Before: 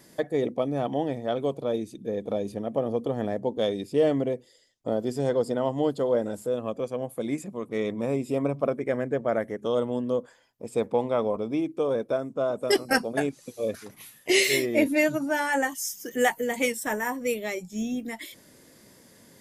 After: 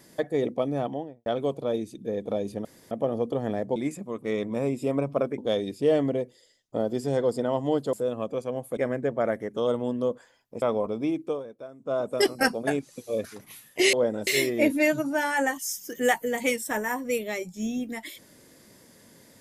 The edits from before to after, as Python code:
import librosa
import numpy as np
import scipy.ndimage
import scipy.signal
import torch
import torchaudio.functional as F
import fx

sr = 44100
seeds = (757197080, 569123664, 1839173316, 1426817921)

y = fx.studio_fade_out(x, sr, start_s=0.73, length_s=0.53)
y = fx.edit(y, sr, fx.insert_room_tone(at_s=2.65, length_s=0.26),
    fx.move(start_s=6.05, length_s=0.34, to_s=14.43),
    fx.move(start_s=7.23, length_s=1.62, to_s=3.5),
    fx.cut(start_s=10.7, length_s=0.42),
    fx.fade_down_up(start_s=11.69, length_s=0.83, db=-14.5, fade_s=0.24, curve='qsin'), tone=tone)